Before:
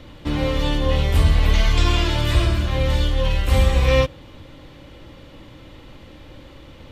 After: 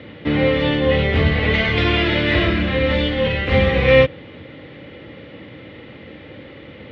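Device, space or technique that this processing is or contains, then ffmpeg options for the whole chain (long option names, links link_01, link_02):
guitar cabinet: -filter_complex "[0:a]highpass=73,asettb=1/sr,asplit=3[link_01][link_02][link_03];[link_01]atrim=end=2.094[link_04];[link_02]atrim=start=2.09:end=3.27,asetpts=PTS-STARTPTS,afade=type=in:duration=0.004:curve=qsin,afade=type=out:start_time=1.176:duration=0.004:curve=qsin,asplit=2[link_05][link_06];[link_06]adelay=31,volume=-4dB[link_07];[link_05][link_07]amix=inputs=2:normalize=0,atrim=end_sample=52038[link_08];[link_03]atrim=start=3.266[link_09];[link_04][link_08]acrossfade=duration=0.004:curve1=hsin:curve2=qsin[link_10];[link_10][link_09]acrossfade=duration=0.004:curve1=qsin:curve2=hsin,highpass=85,equalizer=frequency=210:width_type=q:width=4:gain=4,equalizer=frequency=450:width_type=q:width=4:gain=7,equalizer=frequency=1000:width_type=q:width=4:gain=-7,equalizer=frequency=2000:width_type=q:width=4:gain=8,lowpass=frequency=3500:width=0.5412,lowpass=frequency=3500:width=1.3066,volume=4.5dB"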